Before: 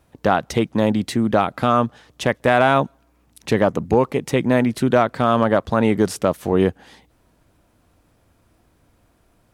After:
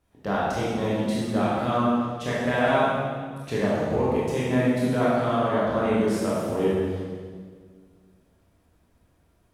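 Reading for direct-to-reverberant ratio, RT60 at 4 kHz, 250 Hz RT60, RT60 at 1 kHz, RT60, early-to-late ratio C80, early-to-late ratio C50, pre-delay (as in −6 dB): −8.5 dB, 1.5 s, 2.2 s, 1.6 s, 1.8 s, −0.5 dB, −3.0 dB, 18 ms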